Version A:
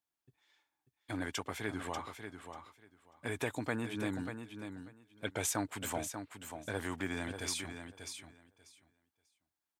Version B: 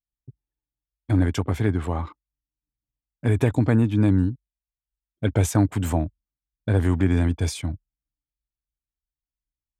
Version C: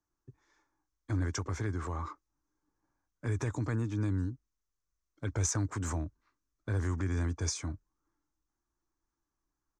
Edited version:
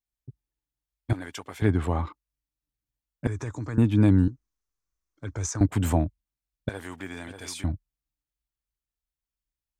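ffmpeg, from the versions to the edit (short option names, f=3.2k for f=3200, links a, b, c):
-filter_complex "[0:a]asplit=2[a][b];[2:a]asplit=2[c][d];[1:a]asplit=5[e][f][g][h][i];[e]atrim=end=1.132[j];[a]atrim=start=1.128:end=1.622[k];[f]atrim=start=1.618:end=3.272[l];[c]atrim=start=3.268:end=3.782[m];[g]atrim=start=3.778:end=4.282[n];[d]atrim=start=4.278:end=5.612[o];[h]atrim=start=5.608:end=6.692[p];[b]atrim=start=6.688:end=7.642[q];[i]atrim=start=7.638[r];[j][k]acrossfade=d=0.004:c1=hsin:c2=hsin[s];[s][l]acrossfade=d=0.004:c1=hsin:c2=hsin[t];[t][m]acrossfade=d=0.004:c1=hsin:c2=hsin[u];[u][n]acrossfade=d=0.004:c1=hsin:c2=hsin[v];[v][o]acrossfade=d=0.004:c1=hsin:c2=hsin[w];[w][p]acrossfade=d=0.004:c1=hsin:c2=hsin[x];[x][q]acrossfade=d=0.004:c1=hsin:c2=hsin[y];[y][r]acrossfade=d=0.004:c1=hsin:c2=hsin"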